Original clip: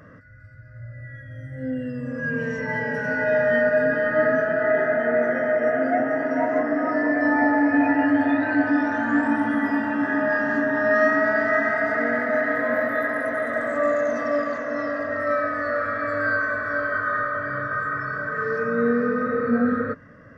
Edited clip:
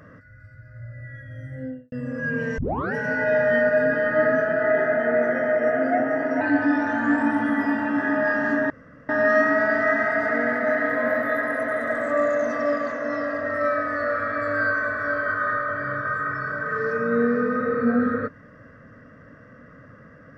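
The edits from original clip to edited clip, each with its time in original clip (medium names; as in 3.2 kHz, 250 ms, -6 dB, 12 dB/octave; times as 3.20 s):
1.51–1.92 s: studio fade out
2.58 s: tape start 0.36 s
6.41–8.46 s: delete
10.75 s: insert room tone 0.39 s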